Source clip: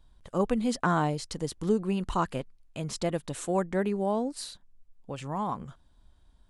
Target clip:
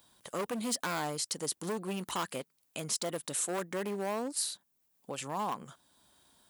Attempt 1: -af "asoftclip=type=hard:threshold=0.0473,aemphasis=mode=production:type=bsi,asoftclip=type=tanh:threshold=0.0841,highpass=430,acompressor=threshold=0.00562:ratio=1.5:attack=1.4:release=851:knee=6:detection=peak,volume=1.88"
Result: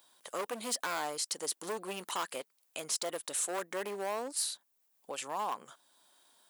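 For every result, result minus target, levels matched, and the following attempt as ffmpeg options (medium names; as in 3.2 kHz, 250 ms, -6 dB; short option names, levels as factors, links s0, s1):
125 Hz band -13.0 dB; saturation: distortion +15 dB
-af "asoftclip=type=hard:threshold=0.0473,aemphasis=mode=production:type=bsi,asoftclip=type=tanh:threshold=0.0841,highpass=120,acompressor=threshold=0.00562:ratio=1.5:attack=1.4:release=851:knee=6:detection=peak,volume=1.88"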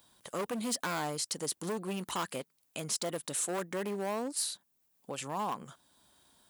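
saturation: distortion +15 dB
-af "asoftclip=type=hard:threshold=0.0473,aemphasis=mode=production:type=bsi,asoftclip=type=tanh:threshold=0.237,highpass=120,acompressor=threshold=0.00562:ratio=1.5:attack=1.4:release=851:knee=6:detection=peak,volume=1.88"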